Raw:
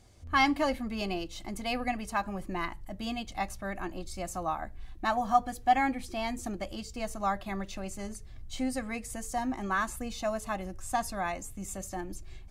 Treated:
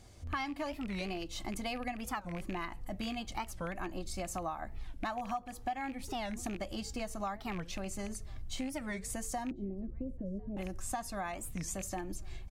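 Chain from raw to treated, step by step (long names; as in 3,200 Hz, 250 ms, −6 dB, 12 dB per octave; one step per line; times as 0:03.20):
loose part that buzzes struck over −36 dBFS, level −31 dBFS
0:09.51–0:10.57: Butterworth low-pass 500 Hz 48 dB per octave
downward compressor 8 to 1, threshold −37 dBFS, peak gain reduction 18.5 dB
slap from a distant wall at 180 metres, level −27 dB
wow of a warped record 45 rpm, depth 250 cents
level +2.5 dB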